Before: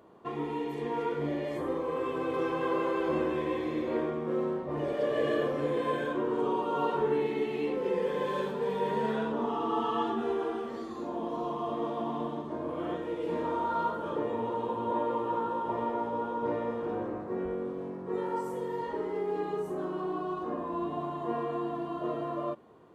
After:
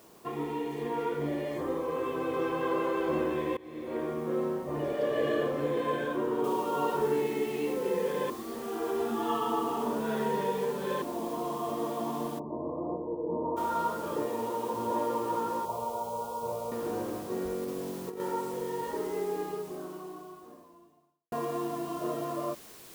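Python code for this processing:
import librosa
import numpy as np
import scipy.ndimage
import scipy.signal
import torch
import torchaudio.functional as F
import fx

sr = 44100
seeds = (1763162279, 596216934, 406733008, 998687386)

y = fx.noise_floor_step(x, sr, seeds[0], at_s=6.44, before_db=-61, after_db=-51, tilt_db=0.0)
y = fx.steep_lowpass(y, sr, hz=1100.0, slope=96, at=(12.38, 13.56), fade=0.02)
y = fx.highpass(y, sr, hz=170.0, slope=6, at=(14.25, 14.74))
y = fx.fixed_phaser(y, sr, hz=730.0, stages=4, at=(15.65, 16.72))
y = fx.over_compress(y, sr, threshold_db=-35.0, ratio=-0.5, at=(17.63, 18.2))
y = fx.edit(y, sr, fx.fade_in_from(start_s=3.57, length_s=0.62, floor_db=-21.0),
    fx.reverse_span(start_s=8.3, length_s=2.72),
    fx.fade_out_span(start_s=19.22, length_s=2.1, curve='qua'), tone=tone)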